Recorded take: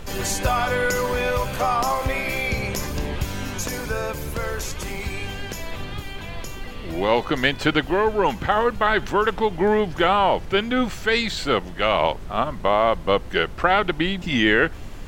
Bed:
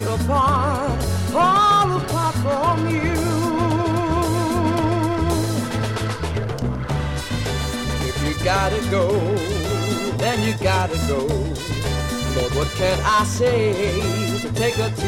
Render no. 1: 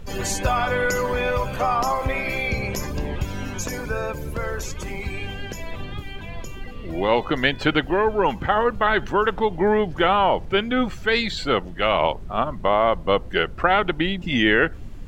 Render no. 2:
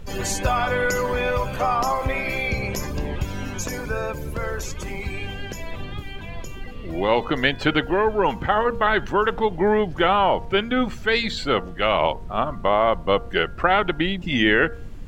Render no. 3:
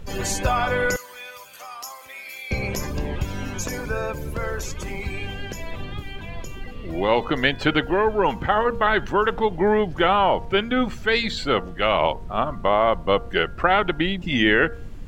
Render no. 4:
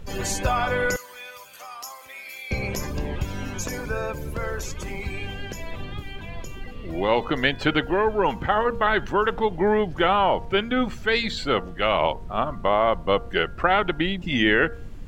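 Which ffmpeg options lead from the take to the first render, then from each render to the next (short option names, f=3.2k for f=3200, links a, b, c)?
-af "afftdn=nr=10:nf=-35"
-af "bandreject=f=233.6:t=h:w=4,bandreject=f=467.2:t=h:w=4,bandreject=f=700.8:t=h:w=4,bandreject=f=934.4:t=h:w=4,bandreject=f=1.168k:t=h:w=4,bandreject=f=1.4016k:t=h:w=4,bandreject=f=1.6352k:t=h:w=4"
-filter_complex "[0:a]asettb=1/sr,asplit=3[a][b][c];[a]atrim=end=0.964[d];[b]atrim=start=0.96:end=2.51,asetpts=PTS-STARTPTS,afade=t=in:d=0.004:c=qsin,afade=t=out:st=1.546:d=0.004:c=qsin,aderivative[e];[c]atrim=start=2.506[f];[d][e]acrossfade=d=0.004:c1=hsin:c2=qsin[g];[g][f]acrossfade=d=0.004:c1=qsin:c2=hsin"
-af "volume=-1.5dB"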